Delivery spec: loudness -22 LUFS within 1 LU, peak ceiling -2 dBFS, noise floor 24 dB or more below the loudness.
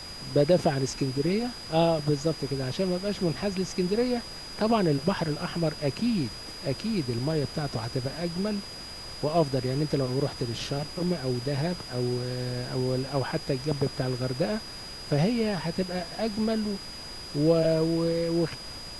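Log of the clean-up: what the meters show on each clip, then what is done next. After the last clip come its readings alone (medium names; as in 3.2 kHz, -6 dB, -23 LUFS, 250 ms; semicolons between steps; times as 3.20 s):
steady tone 4.9 kHz; tone level -40 dBFS; noise floor -41 dBFS; noise floor target -53 dBFS; loudness -28.5 LUFS; peak level -10.0 dBFS; loudness target -22.0 LUFS
-> band-stop 4.9 kHz, Q 30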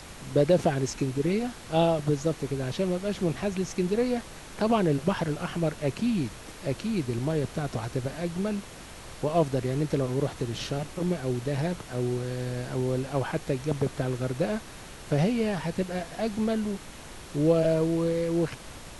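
steady tone not found; noise floor -44 dBFS; noise floor target -53 dBFS
-> noise print and reduce 9 dB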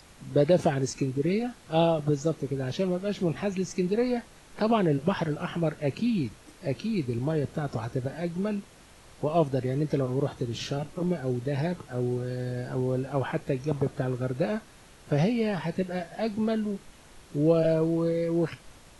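noise floor -53 dBFS; loudness -28.5 LUFS; peak level -10.5 dBFS; loudness target -22.0 LUFS
-> trim +6.5 dB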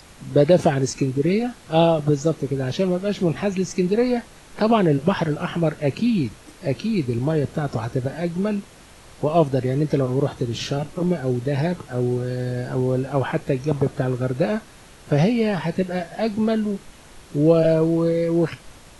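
loudness -22.0 LUFS; peak level -4.0 dBFS; noise floor -46 dBFS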